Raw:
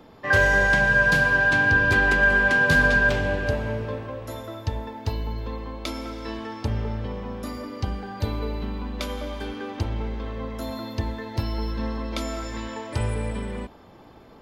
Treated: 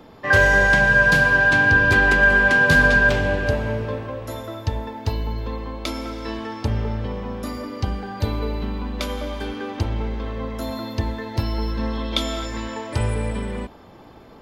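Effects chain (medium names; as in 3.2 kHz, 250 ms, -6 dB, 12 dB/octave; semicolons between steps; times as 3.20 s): 11.93–12.46 s: peaking EQ 3.4 kHz +13.5 dB 0.31 oct; trim +3.5 dB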